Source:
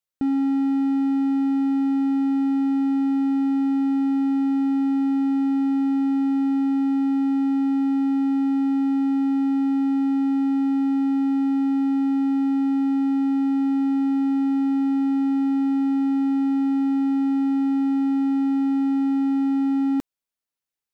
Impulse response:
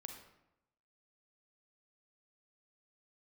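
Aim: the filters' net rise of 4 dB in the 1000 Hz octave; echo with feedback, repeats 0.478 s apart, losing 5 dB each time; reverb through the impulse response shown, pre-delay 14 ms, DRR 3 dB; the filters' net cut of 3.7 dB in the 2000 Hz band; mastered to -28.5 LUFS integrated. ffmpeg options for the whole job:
-filter_complex "[0:a]equalizer=f=1k:t=o:g=6.5,equalizer=f=2k:t=o:g=-5.5,aecho=1:1:478|956|1434|1912|2390|2868|3346:0.562|0.315|0.176|0.0988|0.0553|0.031|0.0173,asplit=2[a][b];[1:a]atrim=start_sample=2205,adelay=14[c];[b][c]afir=irnorm=-1:irlink=0,volume=1.5dB[d];[a][d]amix=inputs=2:normalize=0,volume=-6dB"

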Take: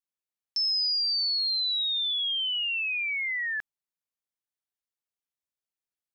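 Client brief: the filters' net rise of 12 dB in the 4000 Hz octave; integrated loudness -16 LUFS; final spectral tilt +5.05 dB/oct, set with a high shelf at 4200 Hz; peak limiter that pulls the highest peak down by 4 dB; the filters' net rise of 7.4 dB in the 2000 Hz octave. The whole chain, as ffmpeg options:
-af "equalizer=f=2k:t=o:g=3.5,equalizer=f=4k:t=o:g=8.5,highshelf=f=4.2k:g=9,volume=0.5dB,alimiter=limit=-14.5dB:level=0:latency=1"

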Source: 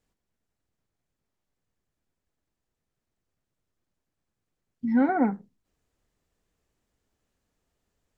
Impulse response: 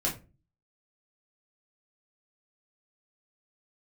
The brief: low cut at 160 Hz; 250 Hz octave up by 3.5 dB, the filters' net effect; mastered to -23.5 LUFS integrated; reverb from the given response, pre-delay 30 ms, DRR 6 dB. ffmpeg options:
-filter_complex "[0:a]highpass=160,equalizer=f=250:t=o:g=4.5,asplit=2[a][b];[1:a]atrim=start_sample=2205,adelay=30[c];[b][c]afir=irnorm=-1:irlink=0,volume=-13dB[d];[a][d]amix=inputs=2:normalize=0,volume=-2.5dB"

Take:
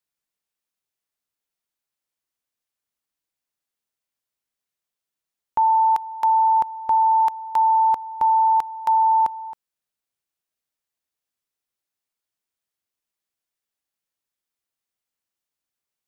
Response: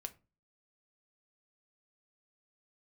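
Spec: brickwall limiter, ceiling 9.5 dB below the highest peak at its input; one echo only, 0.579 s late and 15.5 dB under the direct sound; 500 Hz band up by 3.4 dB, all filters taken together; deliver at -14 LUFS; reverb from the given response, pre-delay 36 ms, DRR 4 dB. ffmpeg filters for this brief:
-filter_complex "[0:a]equalizer=f=500:t=o:g=4.5,alimiter=limit=-21dB:level=0:latency=1,aecho=1:1:579:0.168,asplit=2[a][b];[1:a]atrim=start_sample=2205,adelay=36[c];[b][c]afir=irnorm=-1:irlink=0,volume=-0.5dB[d];[a][d]amix=inputs=2:normalize=0,volume=9dB"

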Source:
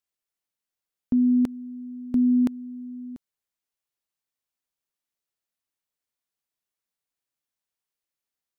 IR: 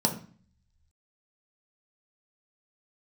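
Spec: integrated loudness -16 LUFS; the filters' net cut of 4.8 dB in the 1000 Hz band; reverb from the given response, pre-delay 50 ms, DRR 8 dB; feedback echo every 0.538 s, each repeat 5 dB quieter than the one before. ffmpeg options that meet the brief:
-filter_complex "[0:a]equalizer=f=1k:t=o:g=-6.5,aecho=1:1:538|1076|1614|2152|2690|3228|3766:0.562|0.315|0.176|0.0988|0.0553|0.031|0.0173,asplit=2[a][b];[1:a]atrim=start_sample=2205,adelay=50[c];[b][c]afir=irnorm=-1:irlink=0,volume=-18dB[d];[a][d]amix=inputs=2:normalize=0,volume=9.5dB"

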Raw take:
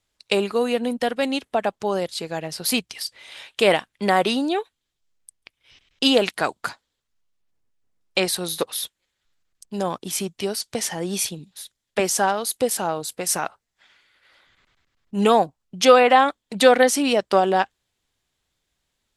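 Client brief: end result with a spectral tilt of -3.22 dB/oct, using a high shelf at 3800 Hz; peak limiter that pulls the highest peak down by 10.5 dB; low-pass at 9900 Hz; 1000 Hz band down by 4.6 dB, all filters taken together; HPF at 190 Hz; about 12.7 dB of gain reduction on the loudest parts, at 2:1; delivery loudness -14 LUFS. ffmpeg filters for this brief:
-af "highpass=190,lowpass=9.9k,equalizer=f=1k:t=o:g=-6.5,highshelf=f=3.8k:g=-5,acompressor=threshold=-34dB:ratio=2,volume=21dB,alimiter=limit=-2dB:level=0:latency=1"

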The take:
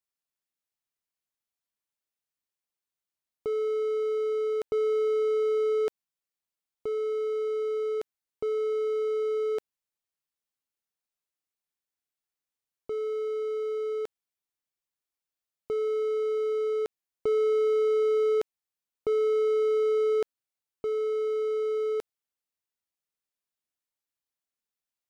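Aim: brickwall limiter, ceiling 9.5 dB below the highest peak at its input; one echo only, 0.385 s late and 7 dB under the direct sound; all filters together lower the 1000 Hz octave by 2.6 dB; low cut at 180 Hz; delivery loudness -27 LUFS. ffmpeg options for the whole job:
-af "highpass=180,equalizer=f=1k:t=o:g=-4,alimiter=level_in=6dB:limit=-24dB:level=0:latency=1,volume=-6dB,aecho=1:1:385:0.447,volume=9dB"

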